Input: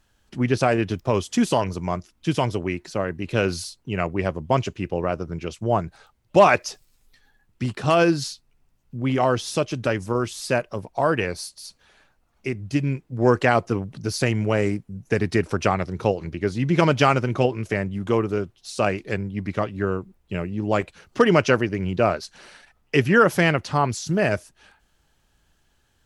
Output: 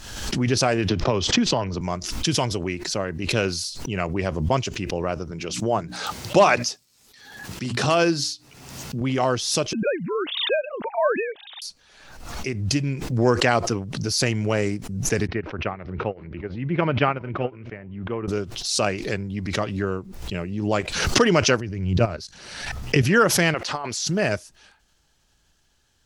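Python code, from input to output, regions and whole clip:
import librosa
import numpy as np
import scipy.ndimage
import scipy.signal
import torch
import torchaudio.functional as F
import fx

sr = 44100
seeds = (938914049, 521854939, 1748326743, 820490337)

y = fx.chain(x, sr, fx.air_absorb(metres=200.0),
    fx.band_squash(depth_pct=100), at=(0.89, 1.81))
y = fx.chain(y, sr, fx.highpass(hz=120.0, slope=12),
    fx.hum_notches(base_hz=60, count=5), at=(5.31, 9.01))
y = fx.chain(y, sr, fx.sine_speech(),
    fx.quant_float(bits=8), at=(9.73, 11.62))
y = fx.chain(y, sr, fx.lowpass(hz=2600.0, slope=24),
    fx.echo_single(ms=372, db=-21.5),
    fx.upward_expand(threshold_db=-28.0, expansion=2.5), at=(15.27, 18.28))
y = fx.chain(y, sr, fx.peak_eq(hz=95.0, db=11.5, octaves=2.2),
    fx.level_steps(step_db=14), at=(21.6, 23.02))
y = fx.chain(y, sr, fx.bass_treble(bass_db=-15, treble_db=-6),
    fx.over_compress(threshold_db=-24.0, ratio=-0.5), at=(23.54, 24.09))
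y = fx.peak_eq(y, sr, hz=5400.0, db=8.0, octaves=1.3)
y = fx.pre_swell(y, sr, db_per_s=50.0)
y = y * librosa.db_to_amplitude(-2.0)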